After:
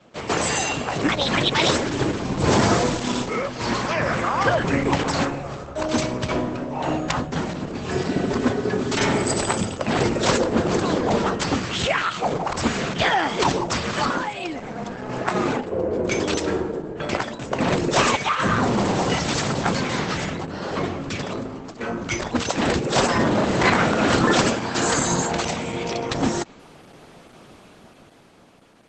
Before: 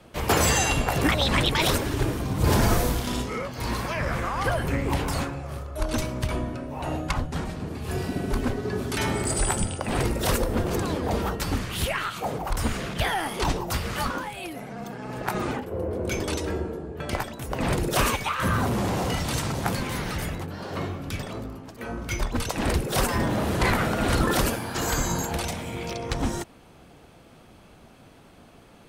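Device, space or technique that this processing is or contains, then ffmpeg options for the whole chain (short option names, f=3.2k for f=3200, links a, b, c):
video call: -af "highpass=150,dynaudnorm=f=270:g=9:m=8dB" -ar 48000 -c:a libopus -b:a 12k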